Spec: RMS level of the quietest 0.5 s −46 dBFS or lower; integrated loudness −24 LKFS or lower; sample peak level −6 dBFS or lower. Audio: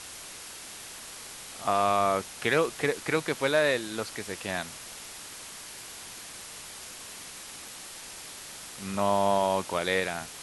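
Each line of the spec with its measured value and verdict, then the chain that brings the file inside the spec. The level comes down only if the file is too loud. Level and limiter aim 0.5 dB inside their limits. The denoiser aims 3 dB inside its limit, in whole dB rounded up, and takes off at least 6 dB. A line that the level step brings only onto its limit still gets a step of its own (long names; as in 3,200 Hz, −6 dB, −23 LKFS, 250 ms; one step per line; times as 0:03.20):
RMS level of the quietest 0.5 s −43 dBFS: out of spec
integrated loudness −30.5 LKFS: in spec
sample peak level −11.5 dBFS: in spec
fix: broadband denoise 6 dB, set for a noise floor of −43 dBFS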